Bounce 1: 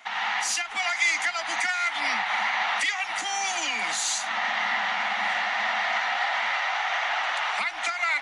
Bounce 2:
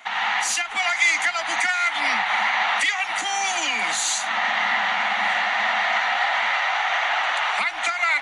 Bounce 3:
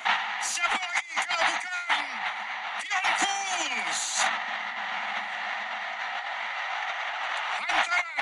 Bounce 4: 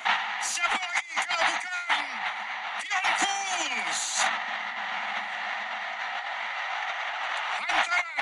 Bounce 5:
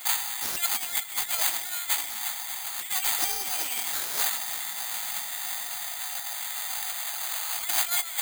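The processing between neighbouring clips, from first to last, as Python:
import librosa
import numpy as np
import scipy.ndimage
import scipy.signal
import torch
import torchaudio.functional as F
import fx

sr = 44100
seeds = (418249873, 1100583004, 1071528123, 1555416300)

y1 = fx.peak_eq(x, sr, hz=5200.0, db=-7.0, octaves=0.24)
y1 = F.gain(torch.from_numpy(y1), 4.5).numpy()
y2 = fx.over_compress(y1, sr, threshold_db=-28.0, ratio=-0.5)
y3 = y2
y4 = fx.echo_alternate(y3, sr, ms=187, hz=880.0, feedback_pct=77, wet_db=-12)
y4 = (np.kron(y4[::8], np.eye(8)[0]) * 8)[:len(y4)]
y4 = F.gain(torch.from_numpy(y4), -10.0).numpy()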